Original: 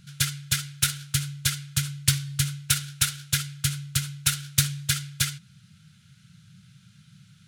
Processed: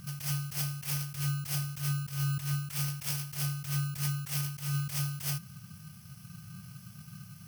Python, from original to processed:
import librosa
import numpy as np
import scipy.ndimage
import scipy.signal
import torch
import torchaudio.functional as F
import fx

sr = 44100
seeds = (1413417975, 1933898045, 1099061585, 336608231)

y = fx.bit_reversed(x, sr, seeds[0], block=32)
y = fx.over_compress(y, sr, threshold_db=-34.0, ratio=-1.0)